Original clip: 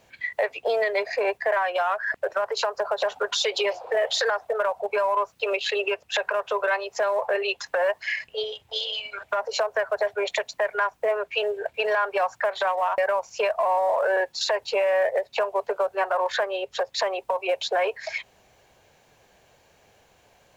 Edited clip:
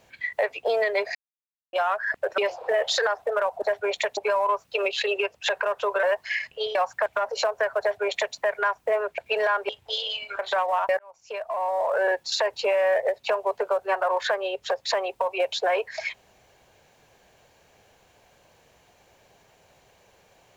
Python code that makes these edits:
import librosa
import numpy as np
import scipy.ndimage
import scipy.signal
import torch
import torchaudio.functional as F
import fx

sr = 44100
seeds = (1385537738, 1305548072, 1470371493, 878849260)

y = fx.edit(x, sr, fx.silence(start_s=1.15, length_s=0.58),
    fx.cut(start_s=2.38, length_s=1.23),
    fx.cut(start_s=6.71, length_s=1.09),
    fx.swap(start_s=8.52, length_s=0.7, other_s=12.17, other_length_s=0.31),
    fx.duplicate(start_s=9.96, length_s=0.55, to_s=4.85),
    fx.cut(start_s=11.34, length_s=0.32),
    fx.fade_in_span(start_s=13.08, length_s=1.09), tone=tone)